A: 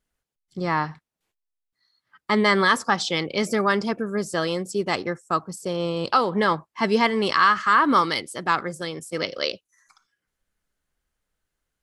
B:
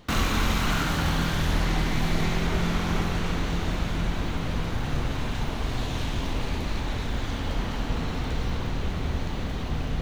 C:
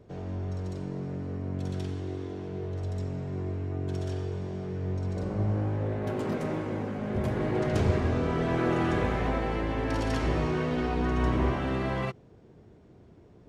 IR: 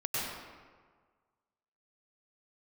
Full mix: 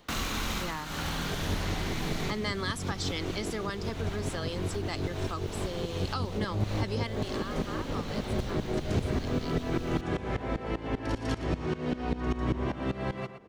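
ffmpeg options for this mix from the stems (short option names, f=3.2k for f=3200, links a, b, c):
-filter_complex "[0:a]volume=-8dB,afade=t=out:st=6.85:d=0.56:silence=0.281838,asplit=2[a][b];[1:a]volume=-3.5dB[c];[2:a]highshelf=f=3.5k:g=-8.5,acontrast=65,aeval=exprs='val(0)*pow(10,-19*if(lt(mod(-5.1*n/s,1),2*abs(-5.1)/1000),1-mod(-5.1*n/s,1)/(2*abs(-5.1)/1000),(mod(-5.1*n/s,1)-2*abs(-5.1)/1000)/(1-2*abs(-5.1)/1000))/20)':c=same,adelay=1150,volume=3dB,asplit=2[d][e];[e]volume=-13dB[f];[b]apad=whole_len=441485[g];[c][g]sidechaincompress=threshold=-33dB:ratio=8:attack=16:release=288[h];[f]aecho=0:1:117|234|351|468:1|0.23|0.0529|0.0122[i];[a][h][d][i]amix=inputs=4:normalize=0,acrossover=split=280|3000[j][k][l];[k]acompressor=threshold=-34dB:ratio=6[m];[j][m][l]amix=inputs=3:normalize=0,bass=f=250:g=-7,treble=f=4k:g=1"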